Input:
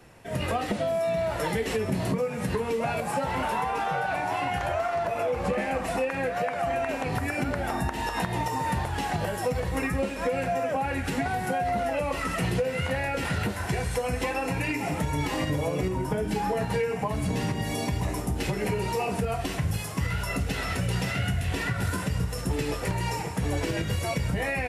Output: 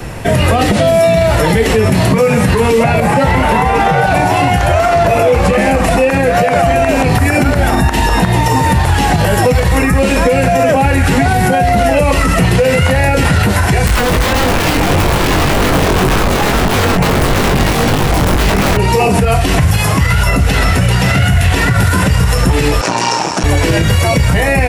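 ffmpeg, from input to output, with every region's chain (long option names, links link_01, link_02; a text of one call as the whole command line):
ffmpeg -i in.wav -filter_complex "[0:a]asettb=1/sr,asplit=3[link_01][link_02][link_03];[link_01]atrim=end=2.834[link_04];[link_02]atrim=start=2.83:end=4.04,asetpts=PTS-STARTPTS,afade=type=in:duration=0.004:curve=qsin,afade=type=out:start_time=1.206:duration=0.004:curve=qsin,equalizer=frequency=2000:width=5.7:gain=6,acrossover=split=3600[link_05][link_06];[link_06]acompressor=threshold=-52dB:ratio=4:attack=1:release=60[link_07];[link_05][link_07]amix=inputs=2:normalize=0[link_08];[link_03]atrim=start=4.036[link_09];[link_04][link_08]acrossfade=duration=0.004:curve1=hsin:curve2=qsin[link_10];[link_10][link_09]acrossfade=duration=0.004:curve1=qsin:curve2=hsin,asettb=1/sr,asplit=3[link_11][link_12][link_13];[link_11]atrim=end=13.874[link_14];[link_12]atrim=start=13.87:end=18.77,asetpts=PTS-STARTPTS,afade=type=in:duration=0.004:curve=qsin,afade=type=out:start_time=4.896:duration=0.004:curve=qsin,asplit=2[link_15][link_16];[link_16]adelay=315,lowpass=frequency=1500:poles=1,volume=-8dB,asplit=2[link_17][link_18];[link_18]adelay=315,lowpass=frequency=1500:poles=1,volume=0.38,asplit=2[link_19][link_20];[link_20]adelay=315,lowpass=frequency=1500:poles=1,volume=0.38,asplit=2[link_21][link_22];[link_22]adelay=315,lowpass=frequency=1500:poles=1,volume=0.38[link_23];[link_15][link_17][link_19][link_21][link_23]amix=inputs=5:normalize=0,atrim=end_sample=216090,aeval=exprs='(mod(15*val(0)+1,2)-1)/15':channel_layout=same,flanger=delay=20:depth=2.3:speed=1.7[link_24];[link_13]atrim=start=18.766[link_25];[link_14][link_24]acrossfade=duration=0.004:curve1=hsin:curve2=qsin[link_26];[link_26][link_25]acrossfade=duration=0.004:curve1=qsin:curve2=hsin,asettb=1/sr,asplit=3[link_27][link_28][link_29];[link_27]atrim=end=22.814[link_30];[link_28]atrim=start=22.81:end=23.44,asetpts=PTS-STARTPTS,afade=type=in:duration=0.004:curve=qsin,afade=type=out:start_time=0.626:duration=0.004:curve=qsin,aeval=exprs='max(val(0),0)':channel_layout=same,highpass=380,equalizer=frequency=460:width_type=q:width=4:gain=-8,equalizer=frequency=2000:width_type=q:width=4:gain=-9,equalizer=frequency=3300:width_type=q:width=4:gain=-4,equalizer=frequency=5600:width_type=q:width=4:gain=9,lowpass=frequency=8400:width=0.5412,lowpass=frequency=8400:width=1.3066[link_31];[link_29]atrim=start=23.436[link_32];[link_30][link_31]acrossfade=duration=0.004:curve1=hsin:curve2=qsin[link_33];[link_33][link_32]acrossfade=duration=0.004:curve1=qsin:curve2=hsin,lowshelf=frequency=130:gain=9.5,acrossover=split=650|1600|4200[link_34][link_35][link_36][link_37];[link_34]acompressor=threshold=-31dB:ratio=4[link_38];[link_35]acompressor=threshold=-41dB:ratio=4[link_39];[link_36]acompressor=threshold=-44dB:ratio=4[link_40];[link_37]acompressor=threshold=-47dB:ratio=4[link_41];[link_38][link_39][link_40][link_41]amix=inputs=4:normalize=0,alimiter=level_in=26.5dB:limit=-1dB:release=50:level=0:latency=1,volume=-1.5dB" out.wav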